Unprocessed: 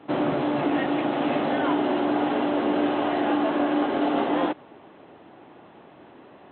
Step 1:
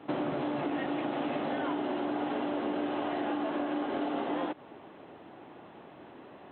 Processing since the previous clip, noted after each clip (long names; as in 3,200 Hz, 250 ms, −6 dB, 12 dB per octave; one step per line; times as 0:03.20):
downward compressor, threshold −28 dBFS, peak gain reduction 9 dB
level −1.5 dB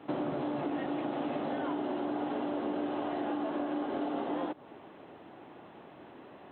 dynamic equaliser 2,300 Hz, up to −5 dB, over −51 dBFS, Q 0.83
level −1 dB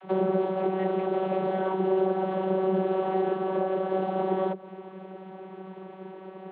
channel vocoder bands 32, saw 189 Hz
level +8 dB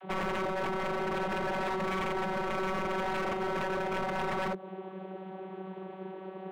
wave folding −27 dBFS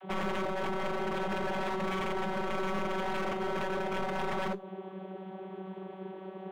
tuned comb filter 200 Hz, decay 0.21 s, harmonics all, mix 60%
level +5 dB